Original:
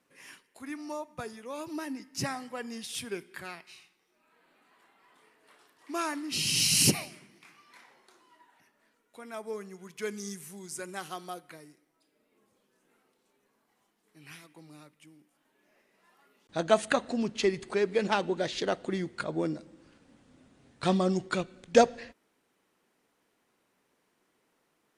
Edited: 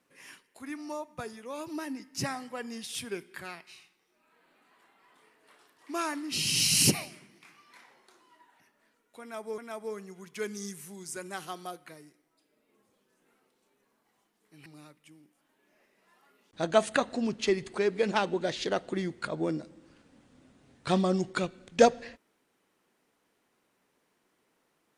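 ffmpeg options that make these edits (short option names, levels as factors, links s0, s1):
-filter_complex "[0:a]asplit=3[s0][s1][s2];[s0]atrim=end=9.582[s3];[s1]atrim=start=9.208:end=14.292[s4];[s2]atrim=start=14.618[s5];[s3][s4]acrossfade=d=0.004:c1=hsin:c2=hsin[s6];[s6][s5]acrossfade=d=0.004:c1=hsin:c2=hsin"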